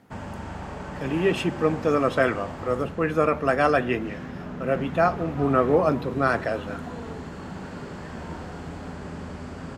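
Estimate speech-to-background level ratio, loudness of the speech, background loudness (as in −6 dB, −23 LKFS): 12.0 dB, −24.0 LKFS, −36.0 LKFS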